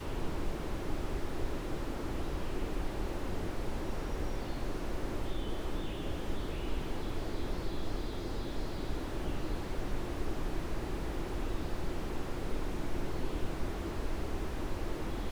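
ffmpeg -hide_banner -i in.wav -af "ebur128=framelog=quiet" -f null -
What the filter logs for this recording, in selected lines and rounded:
Integrated loudness:
  I:         -39.3 LUFS
  Threshold: -49.3 LUFS
Loudness range:
  LRA:         0.4 LU
  Threshold: -59.3 LUFS
  LRA low:   -39.5 LUFS
  LRA high:  -39.1 LUFS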